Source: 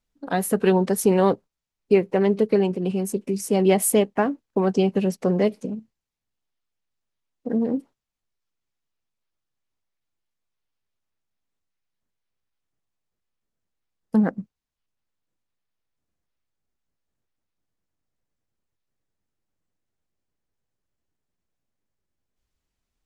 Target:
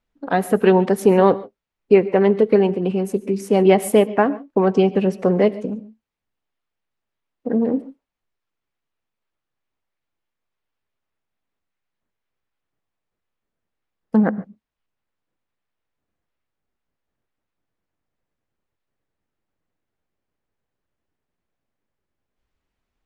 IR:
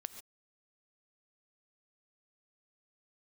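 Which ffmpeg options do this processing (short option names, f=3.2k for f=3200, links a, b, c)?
-filter_complex "[0:a]bass=f=250:g=-4,treble=f=4k:g=-13,asplit=2[a][b];[1:a]atrim=start_sample=2205[c];[b][c]afir=irnorm=-1:irlink=0,volume=-1dB[d];[a][d]amix=inputs=2:normalize=0,volume=1.5dB"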